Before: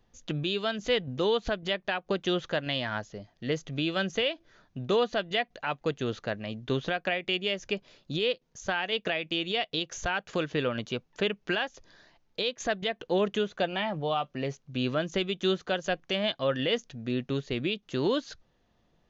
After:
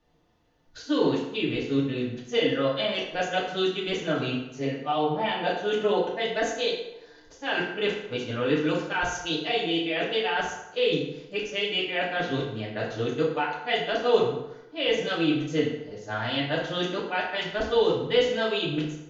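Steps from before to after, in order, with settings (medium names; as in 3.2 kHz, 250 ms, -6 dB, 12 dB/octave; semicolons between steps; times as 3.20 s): reverse the whole clip; hum notches 50/100/150 Hz; FDN reverb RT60 0.91 s, low-frequency decay 0.8×, high-frequency decay 0.7×, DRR -5.5 dB; trim -3.5 dB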